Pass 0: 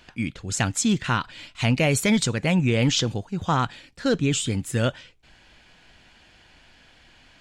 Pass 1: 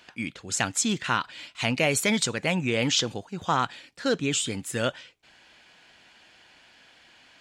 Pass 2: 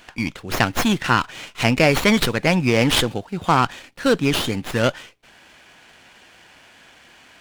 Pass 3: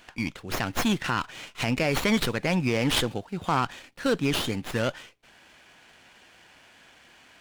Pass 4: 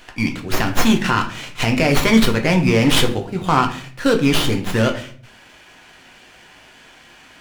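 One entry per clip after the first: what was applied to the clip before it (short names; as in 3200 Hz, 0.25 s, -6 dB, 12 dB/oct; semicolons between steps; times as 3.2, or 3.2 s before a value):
HPF 380 Hz 6 dB/oct
running maximum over 5 samples; gain +7.5 dB
limiter -8.5 dBFS, peak gain reduction 7.5 dB; gain -5.5 dB
shoebox room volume 47 m³, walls mixed, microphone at 0.41 m; gain +7 dB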